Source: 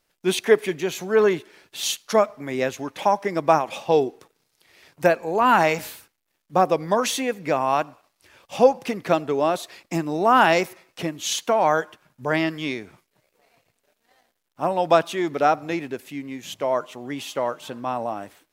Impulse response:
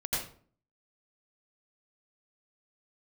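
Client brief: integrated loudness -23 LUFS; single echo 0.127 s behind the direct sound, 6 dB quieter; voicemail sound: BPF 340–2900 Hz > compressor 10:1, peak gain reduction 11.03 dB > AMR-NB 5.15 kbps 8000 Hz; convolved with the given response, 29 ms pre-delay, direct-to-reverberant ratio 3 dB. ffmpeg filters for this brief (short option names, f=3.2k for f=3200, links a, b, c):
-filter_complex "[0:a]aecho=1:1:127:0.501,asplit=2[a][b];[1:a]atrim=start_sample=2205,adelay=29[c];[b][c]afir=irnorm=-1:irlink=0,volume=-9dB[d];[a][d]amix=inputs=2:normalize=0,highpass=340,lowpass=2.9k,acompressor=threshold=-20dB:ratio=10,volume=5.5dB" -ar 8000 -c:a libopencore_amrnb -b:a 5150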